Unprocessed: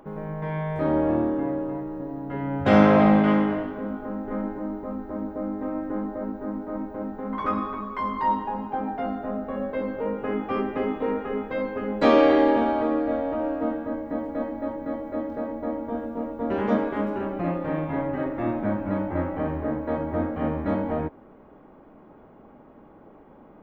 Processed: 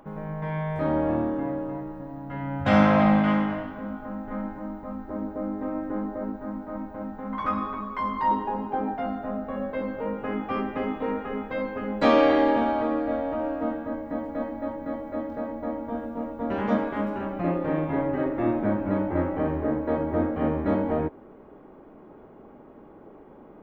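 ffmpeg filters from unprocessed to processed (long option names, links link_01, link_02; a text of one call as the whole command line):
ffmpeg -i in.wav -af "asetnsamples=nb_out_samples=441:pad=0,asendcmd='1.92 equalizer g -14.5;5.08 equalizer g -2.5;6.36 equalizer g -11.5;7.61 equalizer g -5;8.31 equalizer g 5;8.94 equalizer g -6;17.44 equalizer g 5',equalizer=frequency=390:width_type=o:width=0.59:gain=-6.5" out.wav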